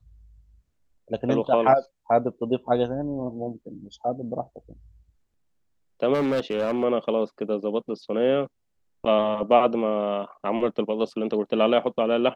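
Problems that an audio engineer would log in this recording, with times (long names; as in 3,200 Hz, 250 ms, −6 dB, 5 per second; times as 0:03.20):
0:06.13–0:06.84: clipping −20 dBFS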